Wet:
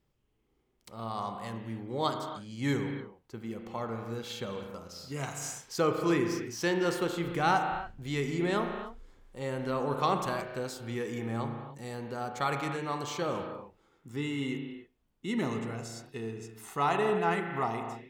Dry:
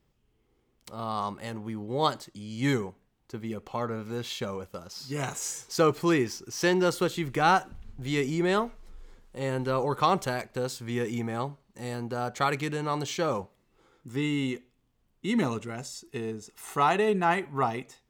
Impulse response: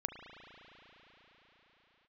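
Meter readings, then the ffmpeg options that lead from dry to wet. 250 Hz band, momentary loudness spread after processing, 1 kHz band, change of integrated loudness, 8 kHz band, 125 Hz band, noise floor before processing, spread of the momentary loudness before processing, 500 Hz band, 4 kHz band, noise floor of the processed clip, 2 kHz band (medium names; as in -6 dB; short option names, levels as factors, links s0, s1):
-3.5 dB, 13 LU, -3.5 dB, -4.0 dB, -5.0 dB, -3.5 dB, -71 dBFS, 14 LU, -3.5 dB, -4.5 dB, -74 dBFS, -3.5 dB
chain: -filter_complex "[1:a]atrim=start_sample=2205,afade=t=out:st=0.36:d=0.01,atrim=end_sample=16317[s0];[0:a][s0]afir=irnorm=-1:irlink=0,volume=0.668"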